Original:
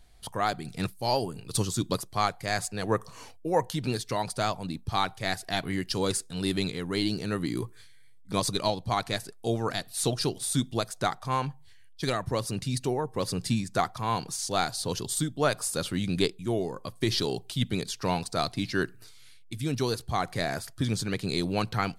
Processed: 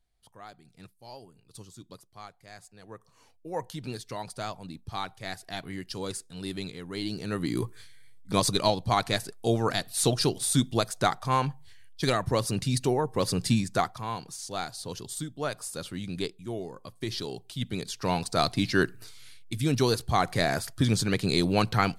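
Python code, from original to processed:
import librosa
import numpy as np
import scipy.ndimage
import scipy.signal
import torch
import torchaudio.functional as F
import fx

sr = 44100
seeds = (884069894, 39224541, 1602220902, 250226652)

y = fx.gain(x, sr, db=fx.line((2.98, -19.0), (3.63, -7.0), (6.91, -7.0), (7.64, 3.0), (13.65, 3.0), (14.17, -6.5), (17.43, -6.5), (18.47, 4.0)))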